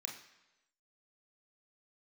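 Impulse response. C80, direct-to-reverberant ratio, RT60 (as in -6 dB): 10.0 dB, 0.5 dB, 1.0 s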